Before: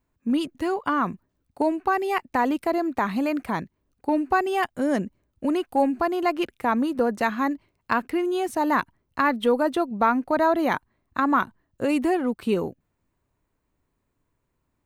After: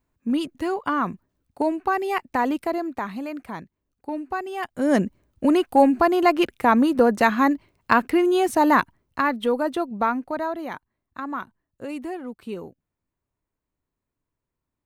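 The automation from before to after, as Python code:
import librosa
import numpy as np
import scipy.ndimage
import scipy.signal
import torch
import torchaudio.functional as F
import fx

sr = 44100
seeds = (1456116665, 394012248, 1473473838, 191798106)

y = fx.gain(x, sr, db=fx.line((2.58, 0.0), (3.22, -7.0), (4.56, -7.0), (4.96, 5.5), (8.66, 5.5), (9.35, -1.5), (10.03, -1.5), (10.66, -9.5)))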